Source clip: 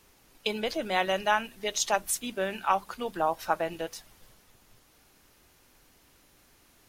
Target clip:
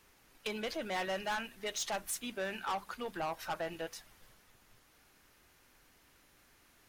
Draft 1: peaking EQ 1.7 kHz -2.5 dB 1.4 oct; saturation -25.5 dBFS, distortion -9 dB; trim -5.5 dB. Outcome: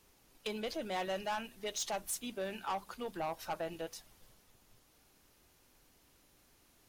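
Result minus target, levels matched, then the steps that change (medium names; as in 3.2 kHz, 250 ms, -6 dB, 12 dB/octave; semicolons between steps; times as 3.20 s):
2 kHz band -4.0 dB
change: peaking EQ 1.7 kHz +5 dB 1.4 oct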